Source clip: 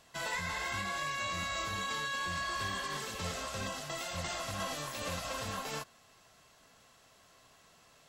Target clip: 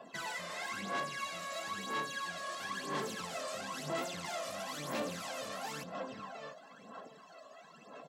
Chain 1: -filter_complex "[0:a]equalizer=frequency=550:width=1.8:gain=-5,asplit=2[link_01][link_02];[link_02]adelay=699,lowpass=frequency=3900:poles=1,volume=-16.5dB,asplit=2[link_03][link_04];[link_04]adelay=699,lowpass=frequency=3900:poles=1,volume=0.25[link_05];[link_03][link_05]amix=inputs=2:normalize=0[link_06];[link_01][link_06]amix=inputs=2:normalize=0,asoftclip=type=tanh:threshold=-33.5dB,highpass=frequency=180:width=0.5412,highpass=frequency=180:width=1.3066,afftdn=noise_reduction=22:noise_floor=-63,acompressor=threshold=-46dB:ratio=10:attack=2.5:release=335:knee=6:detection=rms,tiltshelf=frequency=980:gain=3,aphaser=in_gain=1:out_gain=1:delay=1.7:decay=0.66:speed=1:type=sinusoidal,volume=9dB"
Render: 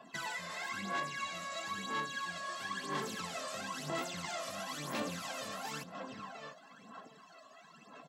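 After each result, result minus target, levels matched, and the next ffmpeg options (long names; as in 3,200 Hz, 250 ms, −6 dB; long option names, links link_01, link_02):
soft clipping: distortion −9 dB; 500 Hz band −2.5 dB
-filter_complex "[0:a]equalizer=frequency=550:width=1.8:gain=-5,asplit=2[link_01][link_02];[link_02]adelay=699,lowpass=frequency=3900:poles=1,volume=-16.5dB,asplit=2[link_03][link_04];[link_04]adelay=699,lowpass=frequency=3900:poles=1,volume=0.25[link_05];[link_03][link_05]amix=inputs=2:normalize=0[link_06];[link_01][link_06]amix=inputs=2:normalize=0,asoftclip=type=tanh:threshold=-43.5dB,highpass=frequency=180:width=0.5412,highpass=frequency=180:width=1.3066,afftdn=noise_reduction=22:noise_floor=-63,acompressor=threshold=-46dB:ratio=10:attack=2.5:release=335:knee=6:detection=rms,tiltshelf=frequency=980:gain=3,aphaser=in_gain=1:out_gain=1:delay=1.7:decay=0.66:speed=1:type=sinusoidal,volume=9dB"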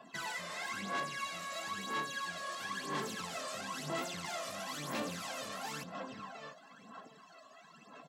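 500 Hz band −2.5 dB
-filter_complex "[0:a]asplit=2[link_01][link_02];[link_02]adelay=699,lowpass=frequency=3900:poles=1,volume=-16.5dB,asplit=2[link_03][link_04];[link_04]adelay=699,lowpass=frequency=3900:poles=1,volume=0.25[link_05];[link_03][link_05]amix=inputs=2:normalize=0[link_06];[link_01][link_06]amix=inputs=2:normalize=0,asoftclip=type=tanh:threshold=-43.5dB,highpass=frequency=180:width=0.5412,highpass=frequency=180:width=1.3066,afftdn=noise_reduction=22:noise_floor=-63,acompressor=threshold=-46dB:ratio=10:attack=2.5:release=335:knee=6:detection=rms,tiltshelf=frequency=980:gain=3,aphaser=in_gain=1:out_gain=1:delay=1.7:decay=0.66:speed=1:type=sinusoidal,volume=9dB"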